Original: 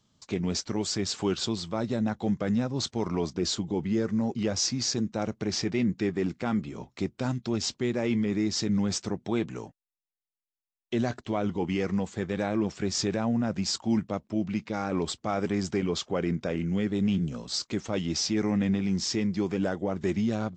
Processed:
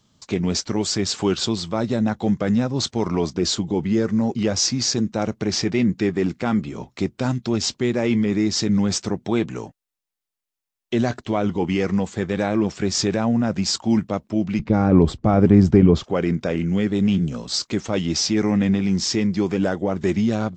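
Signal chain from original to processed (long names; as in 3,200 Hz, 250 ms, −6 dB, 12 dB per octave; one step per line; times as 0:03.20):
0:14.59–0:16.04: spectral tilt −4 dB per octave
level +7 dB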